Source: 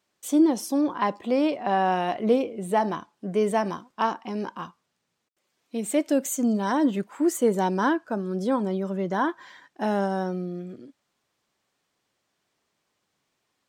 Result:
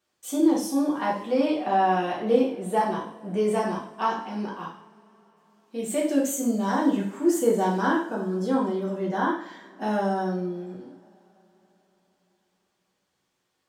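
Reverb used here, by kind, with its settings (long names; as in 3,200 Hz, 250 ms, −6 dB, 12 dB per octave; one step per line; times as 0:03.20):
coupled-rooms reverb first 0.5 s, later 4.3 s, from −28 dB, DRR −4.5 dB
level −6 dB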